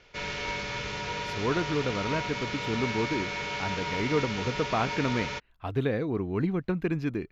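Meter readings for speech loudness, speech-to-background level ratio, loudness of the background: −31.0 LKFS, 2.0 dB, −33.0 LKFS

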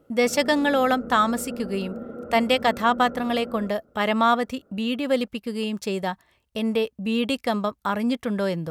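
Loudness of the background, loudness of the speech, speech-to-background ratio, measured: −37.0 LKFS, −24.0 LKFS, 13.0 dB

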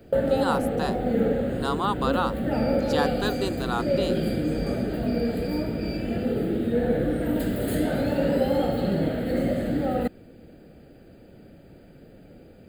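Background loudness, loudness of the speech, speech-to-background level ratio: −26.0 LKFS, −30.5 LKFS, −4.5 dB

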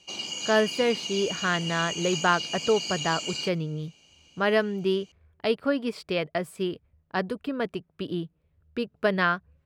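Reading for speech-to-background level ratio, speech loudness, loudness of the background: 3.5 dB, −28.0 LKFS, −31.5 LKFS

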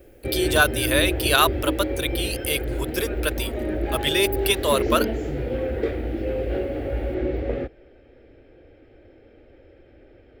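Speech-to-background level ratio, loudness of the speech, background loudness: 3.5 dB, −23.5 LKFS, −27.0 LKFS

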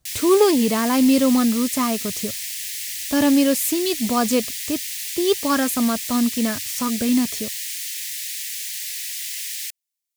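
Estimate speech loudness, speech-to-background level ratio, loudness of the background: −20.5 LKFS, 6.0 dB, −26.5 LKFS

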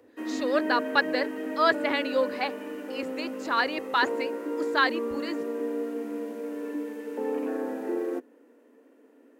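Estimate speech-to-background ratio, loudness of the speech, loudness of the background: 5.5 dB, −27.5 LKFS, −33.0 LKFS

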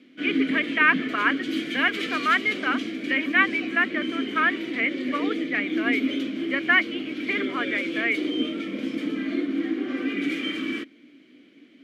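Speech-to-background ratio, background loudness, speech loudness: 3.5 dB, −28.5 LKFS, −25.0 LKFS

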